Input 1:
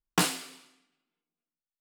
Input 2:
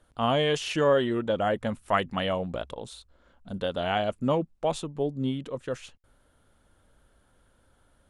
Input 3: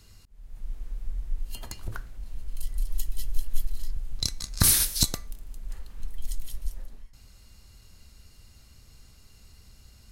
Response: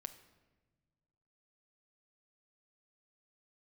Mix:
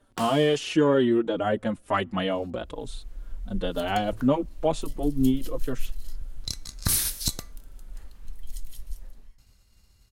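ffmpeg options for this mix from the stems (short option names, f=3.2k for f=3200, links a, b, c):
-filter_complex "[0:a]acompressor=threshold=-32dB:ratio=6,volume=-2dB[a];[1:a]equalizer=f=300:t=o:w=0.77:g=7,acontrast=22,asplit=2[b][c];[c]adelay=4.6,afreqshift=-2.1[d];[b][d]amix=inputs=2:normalize=1,volume=-2.5dB,asplit=2[e][f];[f]volume=-23.5dB[g];[2:a]agate=range=-33dB:threshold=-46dB:ratio=3:detection=peak,adelay=2250,volume=-4dB[h];[3:a]atrim=start_sample=2205[i];[g][i]afir=irnorm=-1:irlink=0[j];[a][e][h][j]amix=inputs=4:normalize=0"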